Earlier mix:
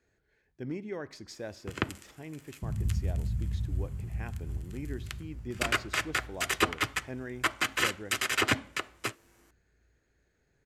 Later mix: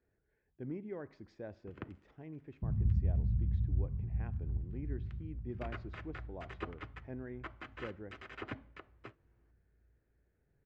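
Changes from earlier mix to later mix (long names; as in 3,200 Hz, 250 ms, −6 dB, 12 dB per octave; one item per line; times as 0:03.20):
speech −3.5 dB
first sound −12.0 dB
master: add head-to-tape spacing loss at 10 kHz 42 dB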